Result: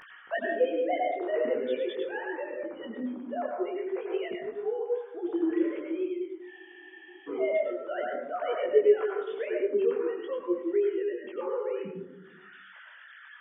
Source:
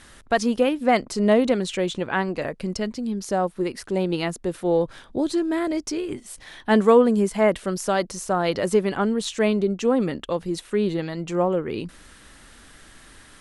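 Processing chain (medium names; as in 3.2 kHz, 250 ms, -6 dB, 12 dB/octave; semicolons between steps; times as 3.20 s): formants replaced by sine waves; reverberation RT60 0.80 s, pre-delay 86 ms, DRR -1 dB; upward compressor, threshold -27 dBFS; spectral freeze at 6.50 s, 0.79 s; detune thickener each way 16 cents; trim -6 dB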